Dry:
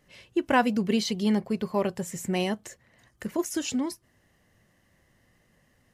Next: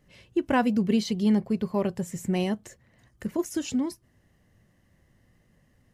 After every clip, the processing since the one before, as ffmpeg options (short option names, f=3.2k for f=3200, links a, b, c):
-af "lowshelf=f=340:g=9,volume=-4dB"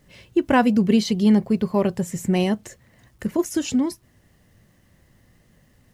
-af "acrusher=bits=11:mix=0:aa=0.000001,volume=6dB"